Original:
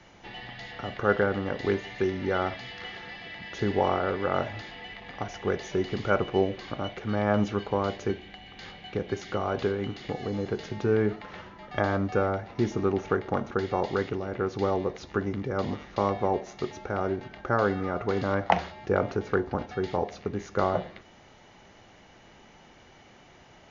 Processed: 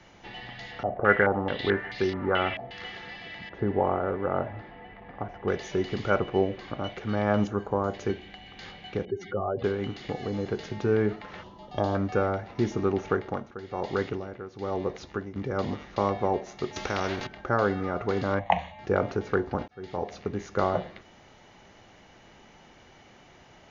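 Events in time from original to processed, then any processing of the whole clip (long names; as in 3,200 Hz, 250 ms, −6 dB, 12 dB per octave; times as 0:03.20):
0:00.83–0:02.71: low-pass on a step sequencer 4.6 Hz 670–4,800 Hz
0:03.49–0:05.48: low-pass filter 1,300 Hz
0:06.19–0:06.84: parametric band 5,800 Hz −6 dB 2.1 octaves
0:07.47–0:07.94: flat-topped bell 3,300 Hz −15 dB
0:09.05–0:09.64: expanding power law on the bin magnitudes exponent 2.3
0:11.43–0:11.95: flat-topped bell 1,800 Hz −13.5 dB 1.1 octaves
0:13.12–0:15.36: amplitude tremolo 1.1 Hz, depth 75%
0:16.76–0:17.27: every bin compressed towards the loudest bin 2 to 1
0:18.39–0:18.79: phaser with its sweep stopped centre 1,400 Hz, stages 6
0:19.68–0:20.15: fade in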